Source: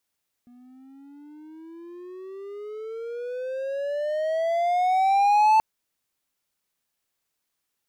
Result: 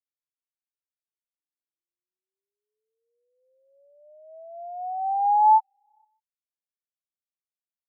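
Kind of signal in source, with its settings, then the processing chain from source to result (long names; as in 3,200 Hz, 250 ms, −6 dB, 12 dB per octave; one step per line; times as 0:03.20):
pitch glide with a swell triangle, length 5.13 s, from 241 Hz, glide +22.5 semitones, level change +34 dB, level −12 dB
on a send: echo through a band-pass that steps 150 ms, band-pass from 3,100 Hz, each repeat −0.7 octaves, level −5 dB
on the sum: every bin expanded away from the loudest bin 4 to 1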